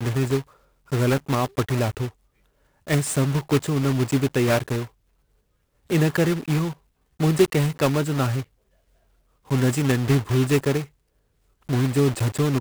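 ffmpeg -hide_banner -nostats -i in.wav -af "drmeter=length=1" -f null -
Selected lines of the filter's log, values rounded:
Channel 1: DR: 11.5
Overall DR: 11.5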